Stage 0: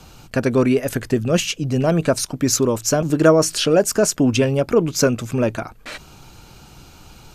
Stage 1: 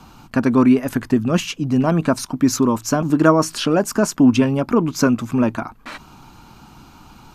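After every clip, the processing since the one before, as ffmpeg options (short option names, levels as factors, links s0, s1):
-af "equalizer=f=250:t=o:w=1:g=10,equalizer=f=500:t=o:w=1:g=-6,equalizer=f=1000:t=o:w=1:g=11,equalizer=f=8000:t=o:w=1:g=-3,volume=0.668"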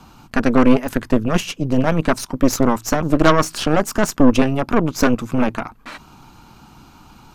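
-af "aeval=exprs='0.891*(cos(1*acos(clip(val(0)/0.891,-1,1)))-cos(1*PI/2))+0.2*(cos(6*acos(clip(val(0)/0.891,-1,1)))-cos(6*PI/2))':c=same,volume=0.891"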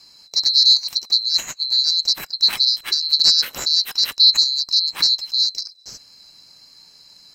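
-af "afftfilt=real='real(if(lt(b,736),b+184*(1-2*mod(floor(b/184),2)),b),0)':imag='imag(if(lt(b,736),b+184*(1-2*mod(floor(b/184),2)),b),0)':win_size=2048:overlap=0.75,volume=0.708"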